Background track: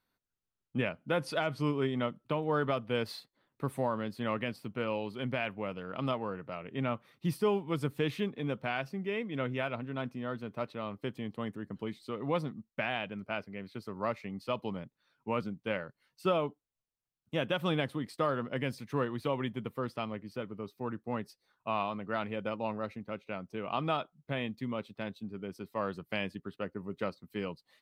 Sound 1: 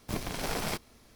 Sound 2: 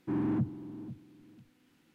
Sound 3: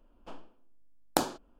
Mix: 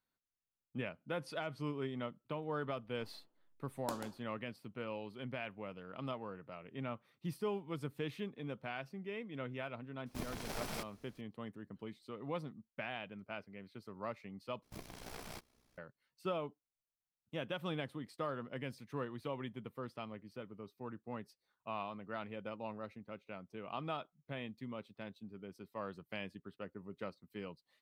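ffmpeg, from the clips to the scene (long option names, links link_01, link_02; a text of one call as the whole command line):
ffmpeg -i bed.wav -i cue0.wav -i cue1.wav -i cue2.wav -filter_complex "[1:a]asplit=2[link_01][link_02];[0:a]volume=-9dB[link_03];[3:a]aecho=1:1:137:0.398[link_04];[link_02]tremolo=f=62:d=0.71[link_05];[link_03]asplit=2[link_06][link_07];[link_06]atrim=end=14.634[link_08];[link_05]atrim=end=1.15,asetpts=PTS-STARTPTS,volume=-12.5dB[link_09];[link_07]atrim=start=15.776[link_10];[link_04]atrim=end=1.59,asetpts=PTS-STARTPTS,volume=-16dB,afade=type=in:duration=0.004:curve=hsin,afade=type=out:start_time=1.586:duration=0.004:curve=hsin,adelay=2720[link_11];[link_01]atrim=end=1.15,asetpts=PTS-STARTPTS,volume=-9.5dB,afade=type=in:duration=0.004:curve=hsin,afade=type=out:start_time=1.146:duration=0.004:curve=hsin,adelay=10060[link_12];[link_08][link_09]acrossfade=duration=0.004:curve1=hsin:curve2=hsin[link_13];[link_13][link_10]acrossfade=duration=0.004:curve1=hsin:curve2=hsin[link_14];[link_14][link_11][link_12]amix=inputs=3:normalize=0" out.wav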